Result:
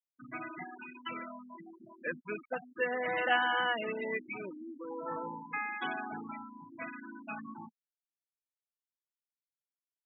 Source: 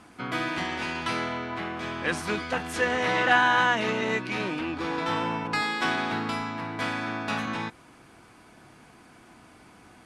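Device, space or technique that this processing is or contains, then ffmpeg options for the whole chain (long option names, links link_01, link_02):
kitchen radio: -filter_complex "[0:a]asettb=1/sr,asplit=3[link_01][link_02][link_03];[link_01]atrim=end=4.494[link_04];[link_02]atrim=start=4.49:end=5.72,asetpts=PTS-STARTPTS,afade=type=in:duration=0.004:curve=qsin,afade=type=out:start_time=1.226:duration=0.004:curve=qsin,bass=frequency=250:gain=-2,treble=frequency=4000:gain=-8[link_05];[link_03]atrim=start=5.716[link_06];[link_04][link_05]acrossfade=duration=0.004:curve1=hsin:curve2=qsin[link_07];[link_07][link_06]acrossfade=duration=0.004:curve1=qsin:curve2=hsin,afftfilt=real='re*gte(hypot(re,im),0.1)':imag='im*gte(hypot(re,im),0.1)':win_size=1024:overlap=0.75,highpass=190,equalizer=frequency=200:width_type=q:width=4:gain=-4,equalizer=frequency=310:width_type=q:width=4:gain=-6,equalizer=frequency=570:width_type=q:width=4:gain=3,equalizer=frequency=1000:width_type=q:width=4:gain=-5,equalizer=frequency=1500:width_type=q:width=4:gain=-3,equalizer=frequency=3300:width_type=q:width=4:gain=8,lowpass=frequency=3700:width=0.5412,lowpass=frequency=3700:width=1.3066,volume=-6dB"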